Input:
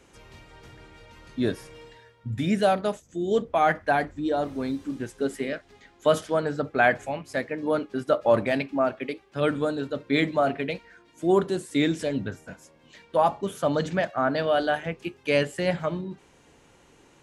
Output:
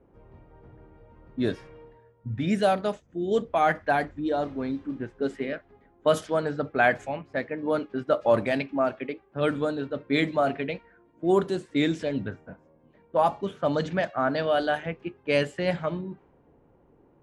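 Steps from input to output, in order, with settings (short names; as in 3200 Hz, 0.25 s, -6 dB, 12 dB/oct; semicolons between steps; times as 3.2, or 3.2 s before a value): low-pass opened by the level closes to 700 Hz, open at -18.5 dBFS; gain -1 dB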